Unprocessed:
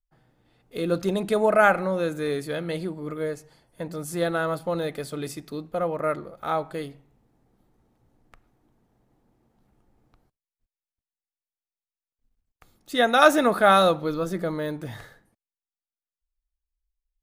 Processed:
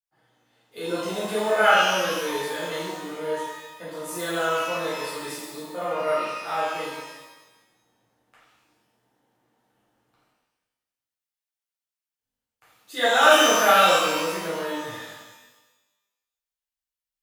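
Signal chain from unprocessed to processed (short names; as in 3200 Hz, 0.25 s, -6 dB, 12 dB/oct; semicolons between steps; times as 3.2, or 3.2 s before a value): HPF 740 Hz 6 dB/oct; shimmer reverb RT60 1.1 s, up +12 st, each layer -8 dB, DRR -10.5 dB; gain -7.5 dB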